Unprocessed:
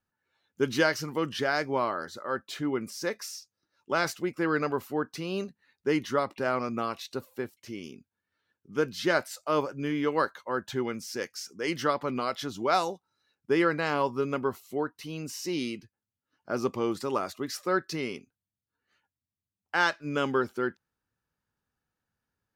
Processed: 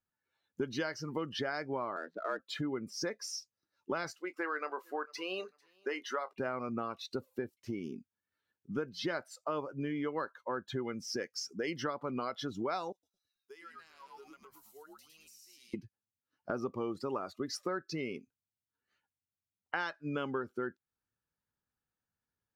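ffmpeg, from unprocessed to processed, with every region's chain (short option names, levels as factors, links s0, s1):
-filter_complex "[0:a]asettb=1/sr,asplit=3[s0][s1][s2];[s0]atrim=end=1.964[s3];[s1]atrim=start=1.96:end=2.39,asetpts=PTS-STARTPTS,afade=t=in:d=0.004:c=qsin,afade=t=out:st=0.426:d=0.004:c=qsin,afreqshift=82,adynamicsmooth=sensitivity=7.5:basefreq=750[s4];[s2]atrim=start=2.386[s5];[s3][s4]acrossfade=d=0.004:c1=hsin:c2=qsin[s6];[s6][s5]acrossfade=d=0.004:c1=qsin:c2=hsin,asettb=1/sr,asplit=3[s7][s8][s9];[s7]atrim=end=4.114[s10];[s8]atrim=start=4.11:end=6.33,asetpts=PTS-STARTPTS,afade=t=in:d=0.004:c=qsin,afade=t=out:st=2.216:d=0.004:c=qsin,highpass=610,asplit=2[s11][s12];[s12]adelay=27,volume=0.224[s13];[s11][s13]amix=inputs=2:normalize=0,atrim=end_sample=97902,aecho=1:1:448|896:0.0794|0.0214,atrim=end_sample=97902[s14];[s9]atrim=start=6.326[s15];[s10][s14]acrossfade=d=0.004:c1=hsin:c2=qsin[s16];[s16][s15]acrossfade=d=0.004:c1=qsin:c2=hsin,asettb=1/sr,asplit=3[s17][s18][s19];[s17]atrim=end=12.924[s20];[s18]atrim=start=12.92:end=15.74,asetpts=PTS-STARTPTS,afade=t=in:d=0.004:c=qsin,afade=t=out:st=2.816:d=0.004:c=qsin,aderivative,asplit=5[s21][s22][s23][s24][s25];[s22]adelay=108,afreqshift=-100,volume=0.668[s26];[s23]adelay=216,afreqshift=-200,volume=0.226[s27];[s24]adelay=324,afreqshift=-300,volume=0.0776[s28];[s25]adelay=432,afreqshift=-400,volume=0.0263[s29];[s21][s26][s27][s28][s29]amix=inputs=5:normalize=0,atrim=end_sample=124362,acompressor=threshold=0.00398:ratio=6:attack=3.2:release=140:knee=1:detection=peak[s30];[s19]atrim=start=15.736[s31];[s20][s30]acrossfade=d=0.004:c1=hsin:c2=qsin[s32];[s32][s31]acrossfade=d=0.004:c1=qsin:c2=hsin,afftdn=nr=15:nf=-39,acompressor=threshold=0.00794:ratio=5,volume=2.24"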